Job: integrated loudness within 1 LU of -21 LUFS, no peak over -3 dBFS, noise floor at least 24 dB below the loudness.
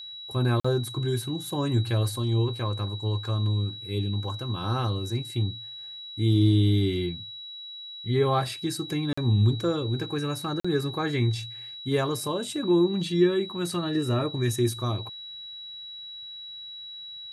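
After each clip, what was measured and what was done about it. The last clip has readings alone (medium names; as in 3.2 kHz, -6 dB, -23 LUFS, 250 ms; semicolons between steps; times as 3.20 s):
dropouts 3; longest dropout 45 ms; steady tone 3.9 kHz; tone level -38 dBFS; loudness -27.0 LUFS; peak level -10.5 dBFS; loudness target -21.0 LUFS
-> interpolate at 0.60/9.13/10.60 s, 45 ms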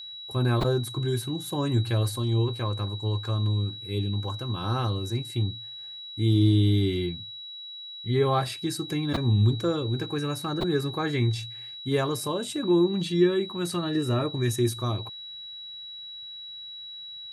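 dropouts 0; steady tone 3.9 kHz; tone level -38 dBFS
-> band-stop 3.9 kHz, Q 30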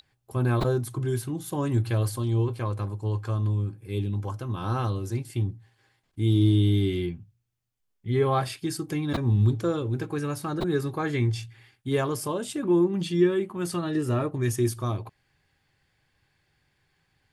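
steady tone not found; loudness -27.0 LUFS; peak level -11.0 dBFS; loudness target -21.0 LUFS
-> trim +6 dB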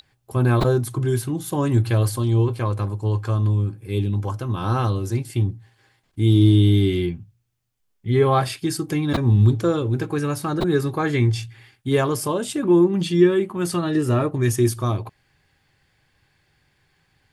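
loudness -21.0 LUFS; peak level -5.0 dBFS; noise floor -68 dBFS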